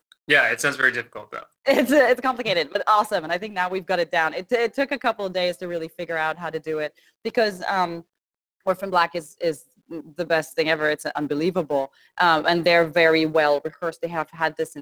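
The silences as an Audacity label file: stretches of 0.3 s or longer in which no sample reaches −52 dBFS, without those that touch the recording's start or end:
8.020000	8.610000	silence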